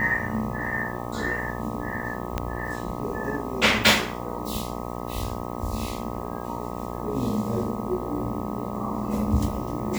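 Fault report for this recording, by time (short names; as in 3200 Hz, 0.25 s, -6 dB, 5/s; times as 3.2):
buzz 60 Hz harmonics 21 -33 dBFS
2.38 pop -12 dBFS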